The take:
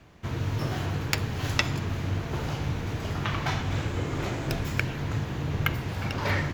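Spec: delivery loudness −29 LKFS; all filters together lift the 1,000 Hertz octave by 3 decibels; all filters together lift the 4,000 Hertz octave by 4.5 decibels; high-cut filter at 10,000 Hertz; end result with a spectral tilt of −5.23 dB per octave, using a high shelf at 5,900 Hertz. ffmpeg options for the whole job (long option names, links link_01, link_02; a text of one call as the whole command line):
ffmpeg -i in.wav -af "lowpass=10000,equalizer=frequency=1000:width_type=o:gain=3.5,equalizer=frequency=4000:width_type=o:gain=8,highshelf=frequency=5900:gain=-6.5,volume=-0.5dB" out.wav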